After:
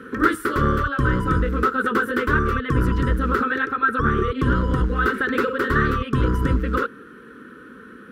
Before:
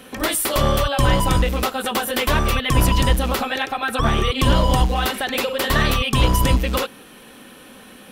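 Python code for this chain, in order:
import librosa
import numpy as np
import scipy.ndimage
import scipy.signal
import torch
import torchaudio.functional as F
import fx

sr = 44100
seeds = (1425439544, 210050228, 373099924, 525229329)

y = fx.curve_eq(x, sr, hz=(180.0, 460.0, 680.0, 1400.0, 2400.0, 13000.0), db=(0, 5, -27, 10, -14, -22))
y = fx.rider(y, sr, range_db=10, speed_s=0.5)
y = scipy.signal.sosfilt(scipy.signal.butter(2, 49.0, 'highpass', fs=sr, output='sos'), y)
y = fx.transformer_sat(y, sr, knee_hz=120.0)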